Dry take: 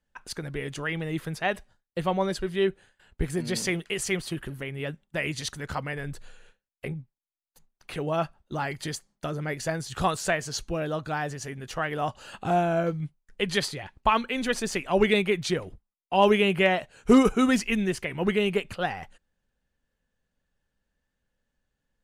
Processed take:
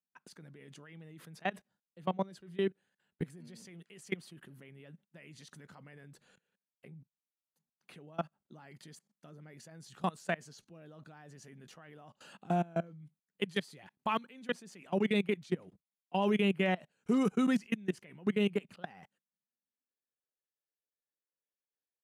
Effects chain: 13.01–14.33 high shelf 7800 Hz +8.5 dB; level quantiser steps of 24 dB; high-pass sweep 180 Hz -> 390 Hz, 19.39–20.22; gain -7 dB

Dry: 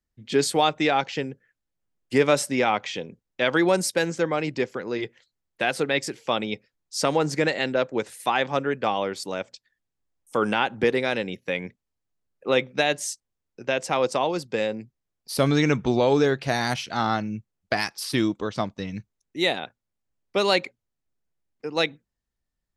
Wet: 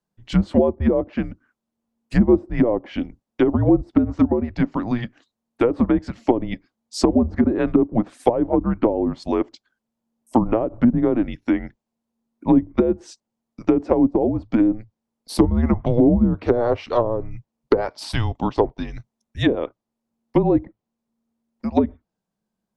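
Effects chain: band shelf 770 Hz +11.5 dB; treble ducked by the level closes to 500 Hz, closed at -10.5 dBFS; frequency shift -230 Hz

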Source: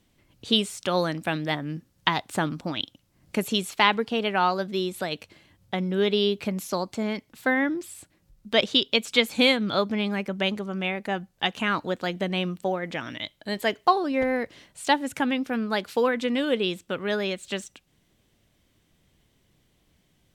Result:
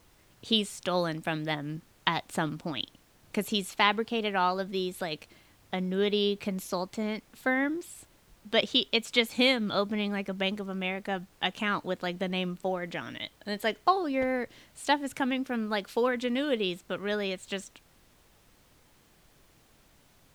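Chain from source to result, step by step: added noise pink -58 dBFS; gain -4 dB

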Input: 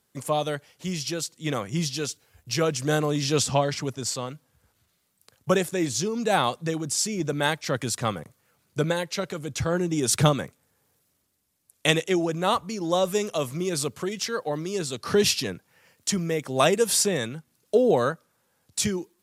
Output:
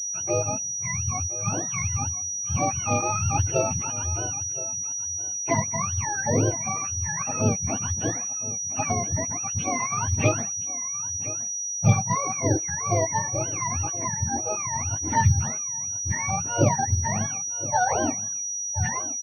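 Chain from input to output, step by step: spectrum mirrored in octaves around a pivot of 610 Hz; echo 1.02 s -16 dB; pulse-width modulation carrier 5800 Hz

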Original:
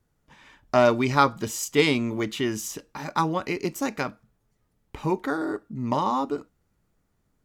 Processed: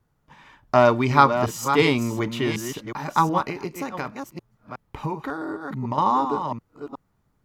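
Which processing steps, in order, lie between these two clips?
reverse delay 0.366 s, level -8 dB; 3.43–5.98 compressor 6:1, threshold -28 dBFS, peak gain reduction 8.5 dB; ten-band EQ 125 Hz +5 dB, 1000 Hz +6 dB, 8000 Hz -4 dB

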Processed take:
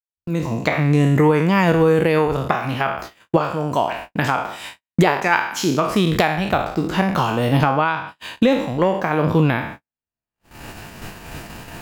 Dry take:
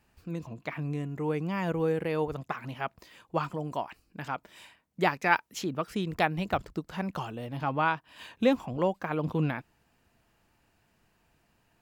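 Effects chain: spectral trails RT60 0.58 s; recorder AGC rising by 23 dB/s; gate -36 dBFS, range -54 dB; gain +5 dB

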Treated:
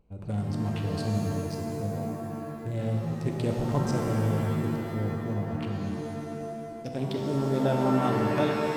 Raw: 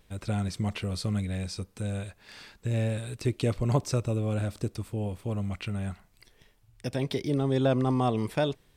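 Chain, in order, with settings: Wiener smoothing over 25 samples; shimmer reverb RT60 2.3 s, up +7 st, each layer -2 dB, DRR 2 dB; gain -3 dB

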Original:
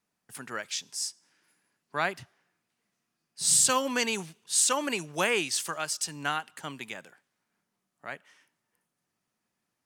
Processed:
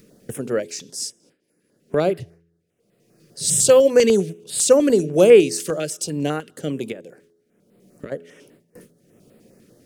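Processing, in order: 2.09–4.04 bell 250 Hz -9.5 dB 0.4 oct; 6.92–8.12 compressor 2:1, threshold -55 dBFS, peak gain reduction 12 dB; gate with hold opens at -55 dBFS; de-hum 84.14 Hz, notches 5; upward compressor, threshold -35 dBFS; resonant low shelf 680 Hz +10.5 dB, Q 3; stepped notch 10 Hz 750–6000 Hz; gain +4.5 dB

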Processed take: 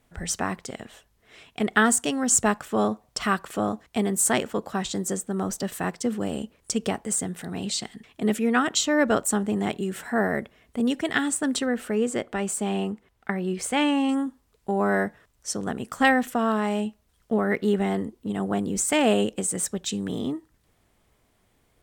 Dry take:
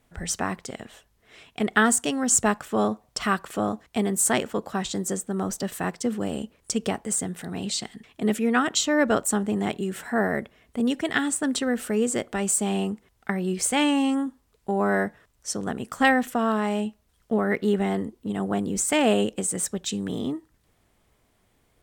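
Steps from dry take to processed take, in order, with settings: 11.66–14.09 tone controls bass -2 dB, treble -7 dB

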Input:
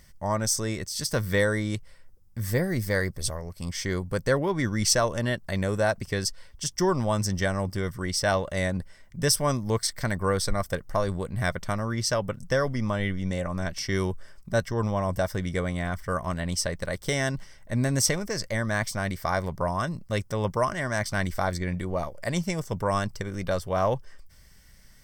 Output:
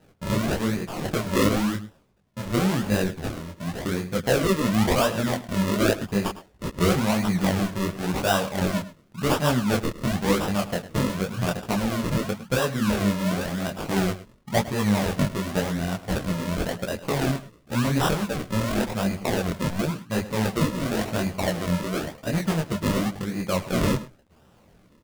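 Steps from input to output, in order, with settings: HPF 110 Hz; bell 210 Hz +7.5 dB 0.53 oct; decimation with a swept rate 39×, swing 100% 0.93 Hz; outdoor echo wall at 18 m, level -15 dB; detuned doubles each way 47 cents; gain +5 dB

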